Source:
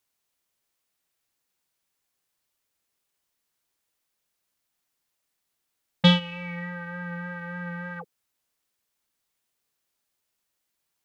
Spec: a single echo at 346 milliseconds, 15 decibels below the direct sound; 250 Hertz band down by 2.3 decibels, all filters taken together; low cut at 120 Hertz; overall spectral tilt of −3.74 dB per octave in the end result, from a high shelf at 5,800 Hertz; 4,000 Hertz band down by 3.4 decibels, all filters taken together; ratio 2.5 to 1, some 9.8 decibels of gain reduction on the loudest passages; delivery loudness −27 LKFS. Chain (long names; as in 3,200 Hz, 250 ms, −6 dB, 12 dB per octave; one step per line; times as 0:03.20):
high-pass filter 120 Hz
parametric band 250 Hz −3 dB
parametric band 4,000 Hz −6.5 dB
high-shelf EQ 5,800 Hz +6.5 dB
downward compressor 2.5 to 1, threshold −28 dBFS
single-tap delay 346 ms −15 dB
level +8.5 dB